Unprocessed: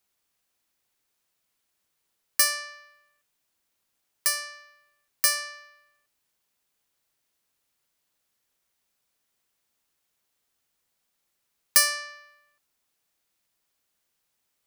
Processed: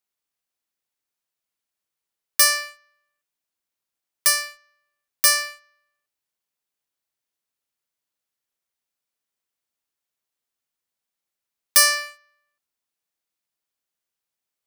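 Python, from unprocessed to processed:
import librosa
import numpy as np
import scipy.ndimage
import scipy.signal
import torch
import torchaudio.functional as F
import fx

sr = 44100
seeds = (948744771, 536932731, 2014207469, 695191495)

y = fx.low_shelf(x, sr, hz=150.0, db=-4.0)
y = fx.leveller(y, sr, passes=3)
y = y * 10.0 ** (-3.0 / 20.0)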